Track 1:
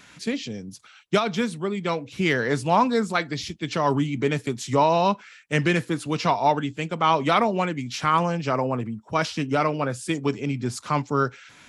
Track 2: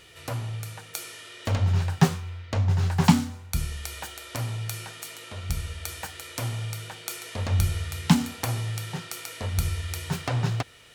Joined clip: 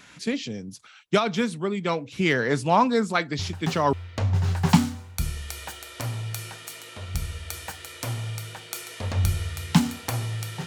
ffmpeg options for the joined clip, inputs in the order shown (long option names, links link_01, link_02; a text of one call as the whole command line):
ffmpeg -i cue0.wav -i cue1.wav -filter_complex "[1:a]asplit=2[link_01][link_02];[0:a]apad=whole_dur=10.66,atrim=end=10.66,atrim=end=3.932[link_03];[link_02]atrim=start=2.278:end=9.01[link_04];[link_01]atrim=start=1.74:end=2.28,asetpts=PTS-STARTPTS,volume=-9dB,afade=type=in:duration=0.004:curve=hsin,afade=type=out:start_time=0.536:duration=0.004:curve=hsin,adelay=3390[link_05];[link_03][link_04]acrossfade=duration=0.004:curve1=hsin:curve2=hsin[link_06];[link_06][link_05]amix=inputs=2:normalize=0" out.wav